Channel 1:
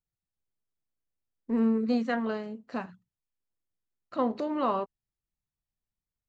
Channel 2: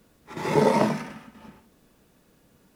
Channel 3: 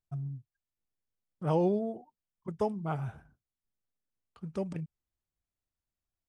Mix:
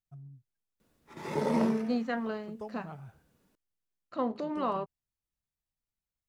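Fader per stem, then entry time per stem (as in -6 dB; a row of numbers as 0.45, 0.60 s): -3.5, -11.0, -11.5 dB; 0.00, 0.80, 0.00 s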